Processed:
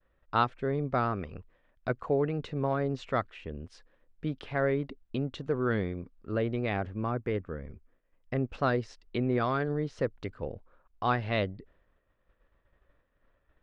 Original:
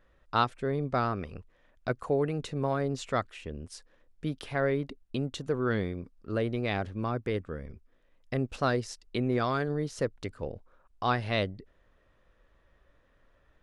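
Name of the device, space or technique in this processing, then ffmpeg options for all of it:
hearing-loss simulation: -filter_complex "[0:a]lowpass=3200,agate=range=-33dB:threshold=-58dB:ratio=3:detection=peak,asettb=1/sr,asplit=3[link_01][link_02][link_03];[link_01]atrim=end=6.694[link_04];[link_02]atrim=start=6.69:end=8.55,asetpts=PTS-STARTPTS,afade=type=in:duration=0.004:curve=qsin,afade=type=out:start_time=1.856:duration=0.004:curve=qsin,equalizer=frequency=3900:width=2:gain=-5.5[link_05];[link_03]atrim=start=8.546[link_06];[link_04][link_05]acrossfade=duration=0.004:curve1=hsin:curve2=qsin[link_07];[link_07][link_06]acrossfade=duration=0.004:curve1=qsin:curve2=hsin"

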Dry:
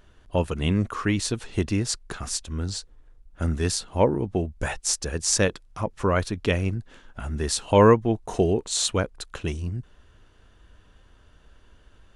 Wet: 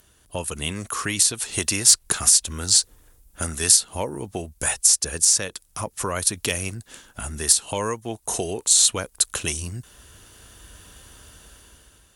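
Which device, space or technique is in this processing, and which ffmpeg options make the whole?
FM broadcast chain: -filter_complex "[0:a]highpass=46,dynaudnorm=framelen=360:gausssize=5:maxgain=11.5dB,acrossover=split=550|4800[link_01][link_02][link_03];[link_01]acompressor=threshold=-28dB:ratio=4[link_04];[link_02]acompressor=threshold=-24dB:ratio=4[link_05];[link_03]acompressor=threshold=-30dB:ratio=4[link_06];[link_04][link_05][link_06]amix=inputs=3:normalize=0,aemphasis=mode=production:type=50fm,alimiter=limit=-6dB:level=0:latency=1:release=348,asoftclip=type=hard:threshold=-9.5dB,lowpass=frequency=15000:width=0.5412,lowpass=frequency=15000:width=1.3066,aemphasis=mode=production:type=50fm,volume=-2.5dB"

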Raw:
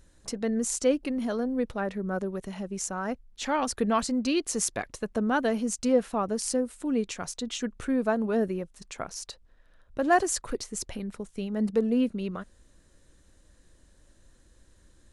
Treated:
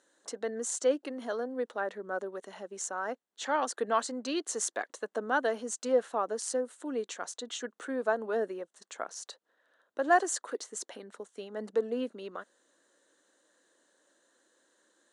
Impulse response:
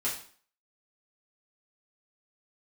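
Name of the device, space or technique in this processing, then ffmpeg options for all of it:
phone speaker on a table: -af "highpass=frequency=330:width=0.5412,highpass=frequency=330:width=1.3066,equalizer=frequency=370:width_type=q:width=4:gain=-3,equalizer=frequency=1600:width_type=q:width=4:gain=3,equalizer=frequency=2400:width_type=q:width=4:gain=-9,equalizer=frequency=5100:width_type=q:width=4:gain=-7,lowpass=frequency=8800:width=0.5412,lowpass=frequency=8800:width=1.3066,volume=-1.5dB"

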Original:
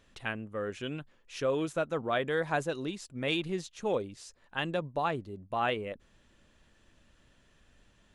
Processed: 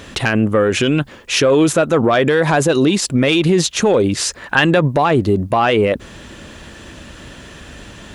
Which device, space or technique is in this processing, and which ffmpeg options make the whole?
mastering chain: -filter_complex "[0:a]highpass=47,equalizer=frequency=330:width_type=o:width=0.77:gain=2.5,acompressor=threshold=-33dB:ratio=2.5,asoftclip=type=tanh:threshold=-24.5dB,asoftclip=type=hard:threshold=-27dB,alimiter=level_in=34.5dB:limit=-1dB:release=50:level=0:latency=1,asettb=1/sr,asplit=3[link_01][link_02][link_03];[link_01]atrim=end=4.154[link_04];[link_02]atrim=start=4.15:end=4.88,asetpts=PTS-STARTPTS,afade=type=in:duration=0.004:curve=qsin,afade=type=out:start_time=0.726:duration=0.004:curve=qsin,equalizer=frequency=1700:width_type=o:width=1.2:gain=5.5[link_05];[link_03]atrim=start=4.876[link_06];[link_04][link_05]acrossfade=duration=0.004:curve1=hsin:curve2=qsin[link_07];[link_07][link_06]acrossfade=duration=0.004:curve1=qsin:curve2=hsin,volume=-5.5dB"

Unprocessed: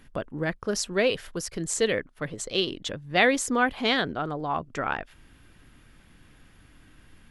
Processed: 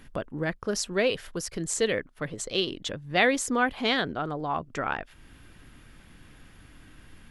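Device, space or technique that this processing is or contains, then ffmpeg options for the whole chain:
parallel compression: -filter_complex "[0:a]asplit=2[link_01][link_02];[link_02]acompressor=threshold=-43dB:ratio=6,volume=-2dB[link_03];[link_01][link_03]amix=inputs=2:normalize=0,volume=-2dB"

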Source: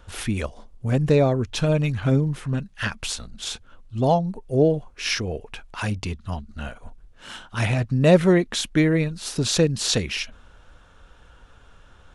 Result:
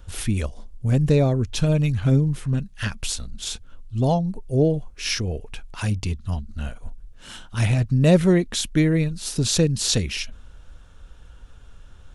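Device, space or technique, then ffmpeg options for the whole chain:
smiley-face EQ: -af "lowshelf=frequency=110:gain=8,equalizer=frequency=1100:width_type=o:width=2.7:gain=-5,highshelf=frequency=6800:gain=5.5"

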